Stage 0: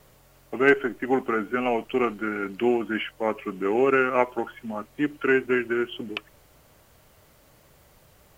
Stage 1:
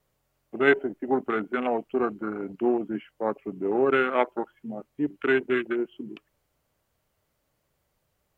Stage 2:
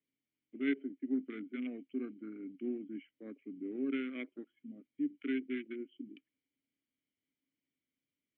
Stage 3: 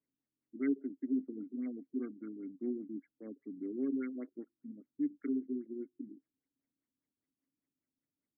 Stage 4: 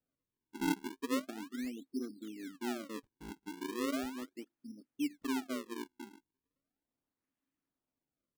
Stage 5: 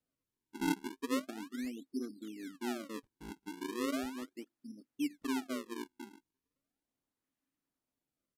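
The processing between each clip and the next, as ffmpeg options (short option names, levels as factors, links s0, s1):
-af "afwtdn=0.0447,volume=0.841"
-filter_complex "[0:a]asplit=3[s0][s1][s2];[s0]bandpass=f=270:t=q:w=8,volume=1[s3];[s1]bandpass=f=2290:t=q:w=8,volume=0.501[s4];[s2]bandpass=f=3010:t=q:w=8,volume=0.355[s5];[s3][s4][s5]amix=inputs=3:normalize=0,volume=0.75"
-af "afftfilt=real='re*lt(b*sr/1024,350*pow(2300/350,0.5+0.5*sin(2*PI*5*pts/sr)))':imag='im*lt(b*sr/1024,350*pow(2300/350,0.5+0.5*sin(2*PI*5*pts/sr)))':win_size=1024:overlap=0.75,volume=1.12"
-af "acrusher=samples=41:mix=1:aa=0.000001:lfo=1:lforange=65.6:lforate=0.37,volume=0.891"
-af "aresample=32000,aresample=44100"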